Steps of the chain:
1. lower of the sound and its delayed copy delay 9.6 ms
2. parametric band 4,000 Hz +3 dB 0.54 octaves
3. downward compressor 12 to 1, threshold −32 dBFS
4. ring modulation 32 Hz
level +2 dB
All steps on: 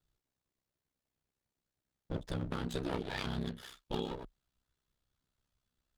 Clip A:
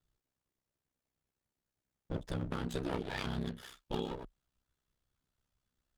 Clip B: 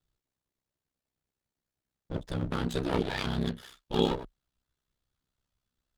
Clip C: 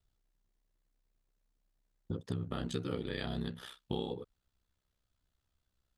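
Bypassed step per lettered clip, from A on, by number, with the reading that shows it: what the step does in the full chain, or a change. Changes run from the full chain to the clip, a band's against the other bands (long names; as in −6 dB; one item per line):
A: 2, 4 kHz band −1.5 dB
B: 3, average gain reduction 6.0 dB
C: 1, 1 kHz band −3.5 dB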